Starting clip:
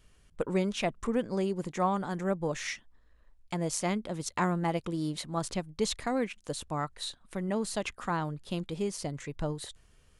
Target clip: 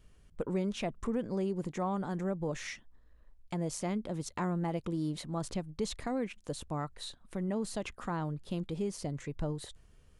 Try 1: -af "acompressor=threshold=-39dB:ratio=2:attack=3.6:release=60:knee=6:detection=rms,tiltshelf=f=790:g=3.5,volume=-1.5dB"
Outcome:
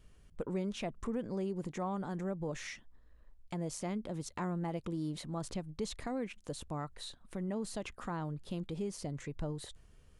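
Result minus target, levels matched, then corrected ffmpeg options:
compressor: peak gain reduction +3.5 dB
-af "acompressor=threshold=-32dB:ratio=2:attack=3.6:release=60:knee=6:detection=rms,tiltshelf=f=790:g=3.5,volume=-1.5dB"

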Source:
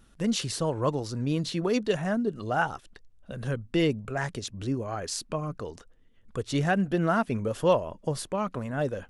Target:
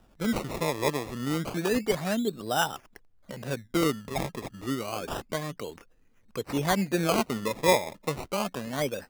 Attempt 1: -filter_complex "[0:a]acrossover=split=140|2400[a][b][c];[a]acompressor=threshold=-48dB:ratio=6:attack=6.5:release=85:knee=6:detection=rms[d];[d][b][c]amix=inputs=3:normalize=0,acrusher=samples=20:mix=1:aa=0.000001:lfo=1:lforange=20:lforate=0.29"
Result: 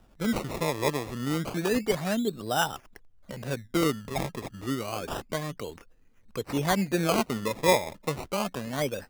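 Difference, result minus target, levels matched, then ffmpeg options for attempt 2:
compressor: peak gain reduction -8 dB
-filter_complex "[0:a]acrossover=split=140|2400[a][b][c];[a]acompressor=threshold=-57.5dB:ratio=6:attack=6.5:release=85:knee=6:detection=rms[d];[d][b][c]amix=inputs=3:normalize=0,acrusher=samples=20:mix=1:aa=0.000001:lfo=1:lforange=20:lforate=0.29"

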